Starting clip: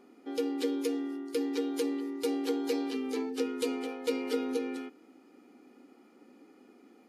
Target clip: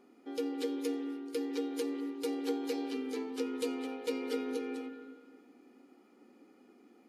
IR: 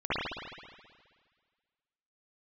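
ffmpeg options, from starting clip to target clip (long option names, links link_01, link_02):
-filter_complex "[0:a]asplit=2[link_01][link_02];[1:a]atrim=start_sample=2205,adelay=88[link_03];[link_02][link_03]afir=irnorm=-1:irlink=0,volume=-21.5dB[link_04];[link_01][link_04]amix=inputs=2:normalize=0,volume=-4dB"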